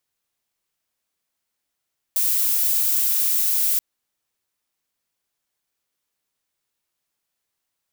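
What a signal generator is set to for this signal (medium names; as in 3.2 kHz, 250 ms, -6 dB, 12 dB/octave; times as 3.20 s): noise violet, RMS -20 dBFS 1.63 s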